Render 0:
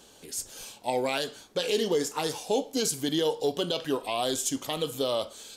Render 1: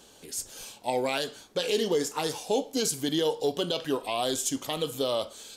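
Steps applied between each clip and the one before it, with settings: nothing audible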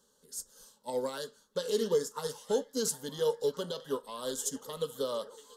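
fixed phaser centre 480 Hz, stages 8; delay with a stepping band-pass 0.684 s, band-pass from 2500 Hz, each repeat -0.7 oct, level -7 dB; upward expander 1.5:1, over -48 dBFS

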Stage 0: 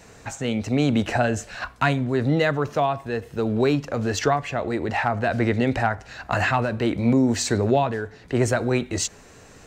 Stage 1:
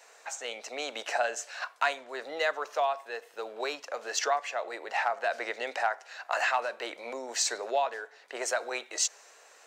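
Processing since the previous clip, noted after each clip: dynamic EQ 5800 Hz, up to +5 dB, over -46 dBFS, Q 1.5; HPF 550 Hz 24 dB/oct; gain -5 dB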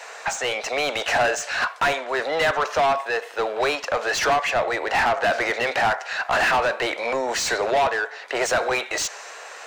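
overdrive pedal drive 27 dB, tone 2600 Hz, clips at -11.5 dBFS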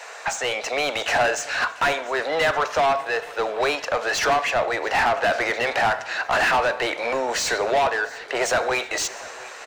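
feedback echo 0.694 s, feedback 56%, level -21 dB; FDN reverb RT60 1.3 s, low-frequency decay 1.2×, high-frequency decay 0.8×, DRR 18 dB

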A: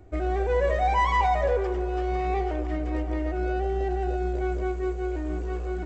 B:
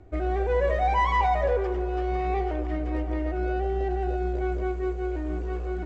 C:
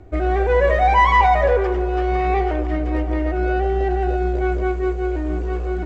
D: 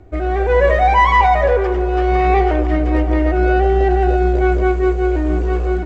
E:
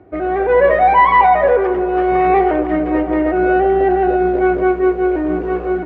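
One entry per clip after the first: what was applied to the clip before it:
air absorption 76 m
dynamic EQ 1700 Hz, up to +4 dB, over -38 dBFS, Q 0.8; gain +7 dB
AGC gain up to 6.5 dB
BPF 160–2100 Hz; gain +2.5 dB

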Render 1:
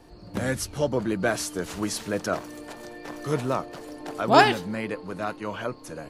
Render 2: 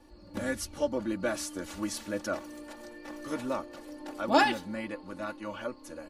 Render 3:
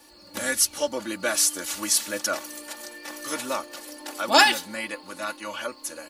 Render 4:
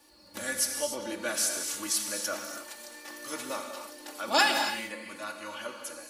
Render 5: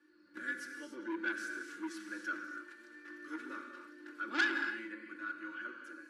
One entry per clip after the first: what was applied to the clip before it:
comb 3.5 ms, depth 87%; gain -8.5 dB
tilt +4 dB/oct; gain +6 dB
non-linear reverb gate 0.32 s flat, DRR 3.5 dB; gain -7.5 dB
double band-pass 710 Hz, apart 2.2 oct; core saturation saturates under 2300 Hz; gain +3.5 dB

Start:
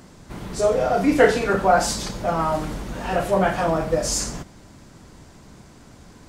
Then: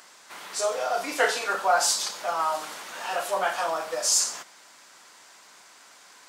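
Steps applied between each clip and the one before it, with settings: HPF 1100 Hz 12 dB/oct; dynamic EQ 2000 Hz, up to -7 dB, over -43 dBFS, Q 1.4; gain +3.5 dB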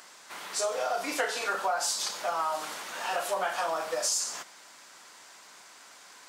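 compressor 6:1, threshold -26 dBFS, peak gain reduction 9.5 dB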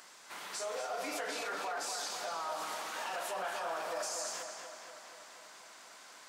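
limiter -27 dBFS, peak gain reduction 10.5 dB; tape echo 0.241 s, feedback 70%, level -4 dB, low-pass 5200 Hz; gain -4 dB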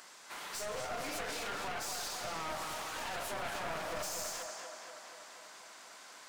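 one-sided fold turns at -39 dBFS; gain +1 dB

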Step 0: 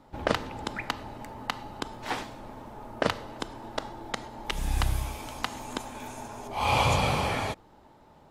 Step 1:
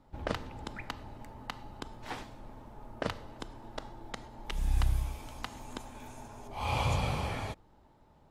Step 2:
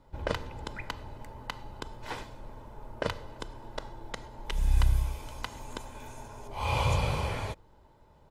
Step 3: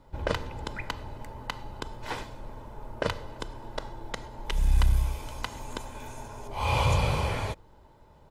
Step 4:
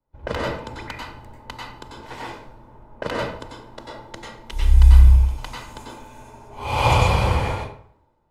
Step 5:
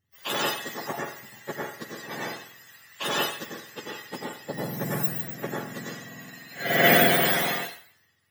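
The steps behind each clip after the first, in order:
low shelf 120 Hz +10.5 dB; gain -9 dB
comb 2 ms, depth 36%; gain +2 dB
soft clip -15.5 dBFS, distortion -19 dB; gain +3.5 dB
reverb RT60 0.75 s, pre-delay 88 ms, DRR -4 dB; three-band expander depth 70%; gain -1.5 dB
spectrum mirrored in octaves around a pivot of 1300 Hz; gain +3.5 dB

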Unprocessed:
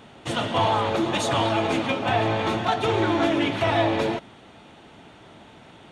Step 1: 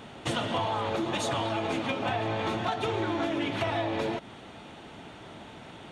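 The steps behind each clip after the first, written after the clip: compressor 6:1, threshold -29 dBFS, peak gain reduction 11.5 dB; gain +2 dB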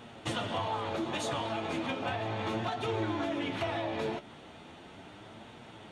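flange 0.36 Hz, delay 8.2 ms, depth 5.8 ms, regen +53%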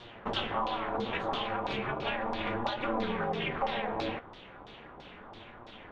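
ring modulator 120 Hz; LFO low-pass saw down 3 Hz 890–5000 Hz; gain +2 dB

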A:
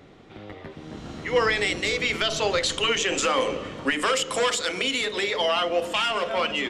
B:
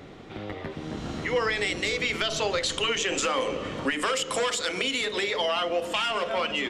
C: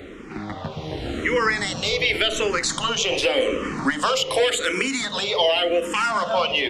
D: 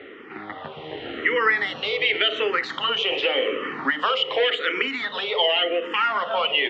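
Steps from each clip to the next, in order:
compressor 2:1, threshold -35 dBFS, peak gain reduction 10.5 dB; gain +5 dB
endless phaser -0.88 Hz; gain +8.5 dB
speaker cabinet 180–3700 Hz, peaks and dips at 190 Hz -8 dB, 430 Hz +6 dB, 830 Hz +4 dB, 1300 Hz +6 dB, 1900 Hz +9 dB, 3000 Hz +8 dB; gain -5.5 dB

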